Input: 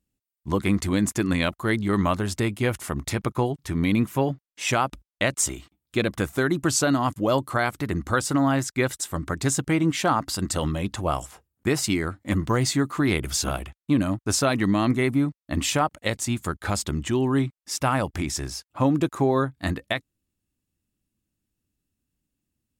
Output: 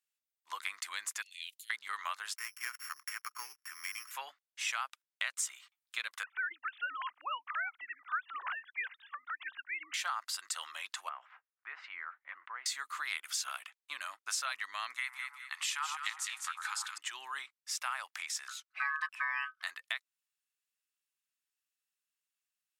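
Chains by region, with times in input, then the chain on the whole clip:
1.22–1.70 s: compressor with a negative ratio -27 dBFS, ratio -0.5 + steep high-pass 2.6 kHz 48 dB/octave
2.37–4.11 s: sorted samples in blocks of 8 samples + static phaser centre 1.6 kHz, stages 4
6.23–9.94 s: formants replaced by sine waves + peaking EQ 530 Hz -6.5 dB 0.75 oct
11.09–12.66 s: low-pass 2.2 kHz 24 dB/octave + compression 3:1, threshold -28 dBFS
14.95–16.98 s: brick-wall FIR band-pass 770–13000 Hz + echo whose repeats swap between lows and highs 102 ms, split 1.2 kHz, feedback 55%, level -2.5 dB
18.48–19.63 s: treble shelf 6.2 kHz -8.5 dB + ring modulator 1.4 kHz
whole clip: high-pass 1.2 kHz 24 dB/octave; treble shelf 7 kHz -4.5 dB; compression 2:1, threshold -36 dBFS; trim -1.5 dB

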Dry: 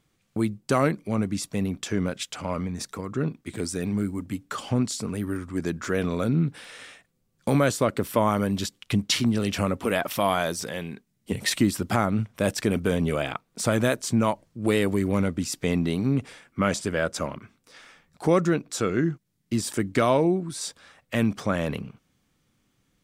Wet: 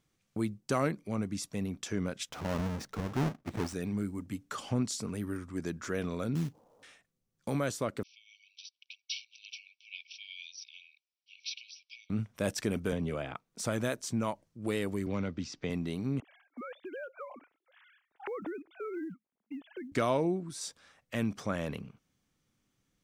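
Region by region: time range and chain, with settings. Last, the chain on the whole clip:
2.29–3.74 s: square wave that keeps the level + treble shelf 3.3 kHz -12 dB
6.35–6.83 s: steep low-pass 1 kHz 48 dB/octave + short-mantissa float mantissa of 2-bit
8.03–12.10 s: brick-wall FIR band-pass 2.2–6 kHz + tilt EQ -3 dB/octave
12.92–13.35 s: low-pass 2.1 kHz 6 dB/octave + three bands compressed up and down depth 70%
15.06–15.70 s: low-pass 5.3 kHz 24 dB/octave + three bands compressed up and down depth 40%
16.20–19.92 s: formants replaced by sine waves + compression 5:1, threshold -31 dBFS + short-mantissa float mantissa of 6-bit
whole clip: peaking EQ 5.9 kHz +4 dB 0.4 oct; gain riding within 3 dB 2 s; trim -8.5 dB

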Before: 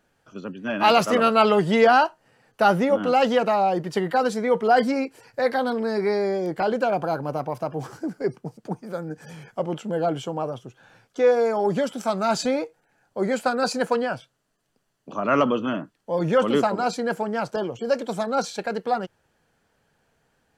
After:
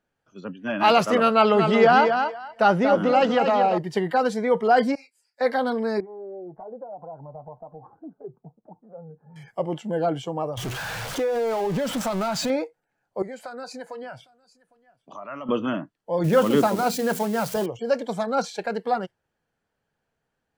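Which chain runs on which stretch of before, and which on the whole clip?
1.31–3.78 s: low-pass 7.7 kHz + feedback delay 235 ms, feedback 20%, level -6.5 dB
4.95–5.41 s: low-pass 8.7 kHz + differentiator + detune thickener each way 46 cents
6.00–9.36 s: low-pass 1.1 kHz 24 dB/octave + compression 4:1, threshold -31 dBFS + flange 1.1 Hz, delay 3.5 ms, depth 1.5 ms, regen -47%
10.57–12.50 s: jump at every zero crossing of -25 dBFS + compression 8:1, threshold -21 dBFS
13.22–15.49 s: compression 4:1, threshold -34 dBFS + delay 806 ms -17.5 dB
16.24–17.66 s: zero-crossing glitches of -22 dBFS + bass shelf 260 Hz +6 dB + hum notches 60/120/180/240/300/360/420 Hz
whole clip: spectral noise reduction 11 dB; treble shelf 5.5 kHz -5.5 dB

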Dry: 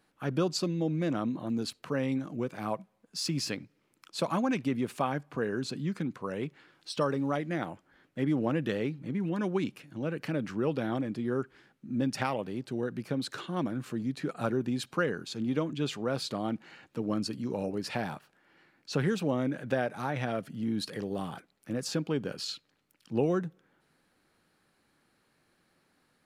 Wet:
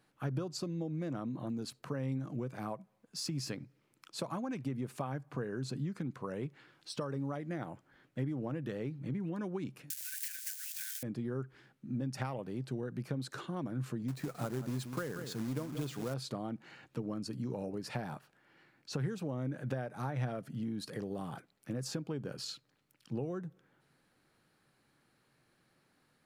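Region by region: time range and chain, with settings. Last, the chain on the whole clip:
9.90–11.03 s: zero-crossing glitches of -28.5 dBFS + Chebyshev high-pass 1.5 kHz, order 8 + treble shelf 2.3 kHz +11.5 dB
14.08–16.14 s: companded quantiser 4-bit + delay 181 ms -13 dB
whole clip: dynamic bell 3 kHz, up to -6 dB, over -53 dBFS, Q 1; compression, threshold -33 dBFS; peaking EQ 130 Hz +10 dB 0.23 oct; trim -2 dB

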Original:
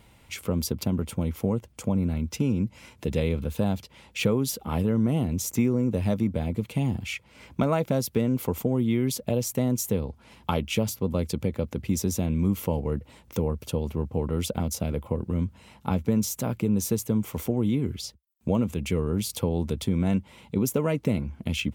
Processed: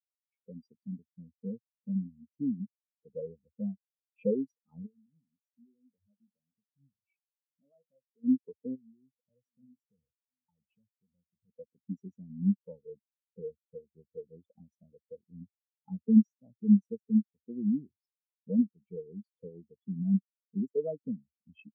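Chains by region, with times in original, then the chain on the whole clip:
4.86–8.24 s: compression 3:1, threshold -33 dBFS + doubling 43 ms -12 dB
8.75–11.49 s: bass shelf 160 Hz +9.5 dB + compression 4:1, threshold -30 dBFS + delay 706 ms -10 dB
whole clip: high-pass 250 Hz 6 dB/octave; spectral contrast expander 4:1; trim +1.5 dB

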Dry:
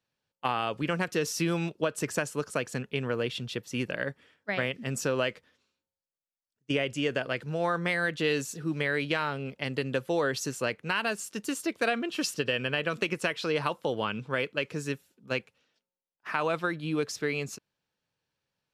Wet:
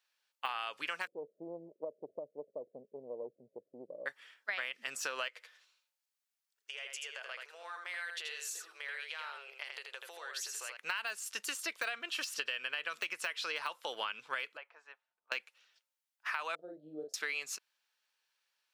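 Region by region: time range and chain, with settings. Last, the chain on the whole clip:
1.07–4.06 s: steep low-pass 620 Hz 96 dB/octave + loudspeaker Doppler distortion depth 0.15 ms
5.28–10.77 s: compression, threshold -41 dBFS + brick-wall FIR high-pass 340 Hz + delay 82 ms -4.5 dB
14.57–15.32 s: ladder band-pass 810 Hz, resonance 75% + band-stop 780 Hz, Q 8
16.55–17.14 s: elliptic low-pass 650 Hz + doubling 39 ms -4 dB
whole clip: de-esser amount 85%; high-pass 1.2 kHz 12 dB/octave; compression, threshold -39 dBFS; trim +5 dB

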